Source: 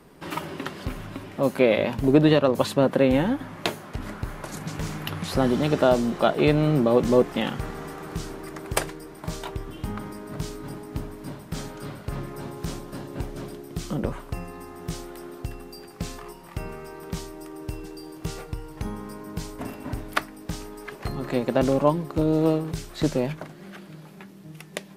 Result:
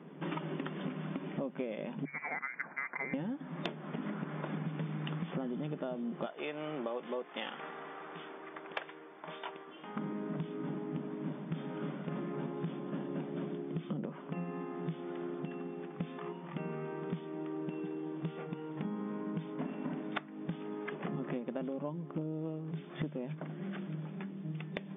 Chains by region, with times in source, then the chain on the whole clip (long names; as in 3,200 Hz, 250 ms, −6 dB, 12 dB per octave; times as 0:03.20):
0:02.05–0:03.14: high-pass filter 940 Hz + voice inversion scrambler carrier 2,600 Hz
0:06.26–0:09.97: Bessel high-pass filter 860 Hz + one half of a high-frequency compander decoder only
whole clip: brick-wall band-pass 140–3,600 Hz; low-shelf EQ 300 Hz +11 dB; downward compressor 16 to 1, threshold −30 dBFS; level −4 dB